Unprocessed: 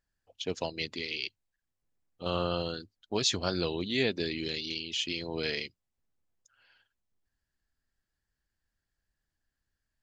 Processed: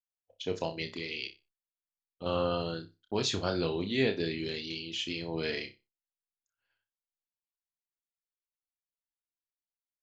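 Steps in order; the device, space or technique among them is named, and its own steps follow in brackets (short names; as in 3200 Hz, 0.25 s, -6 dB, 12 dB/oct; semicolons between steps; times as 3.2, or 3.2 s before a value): expander -54 dBFS; behind a face mask (high shelf 3400 Hz -8 dB); flutter echo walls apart 5.2 m, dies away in 0.24 s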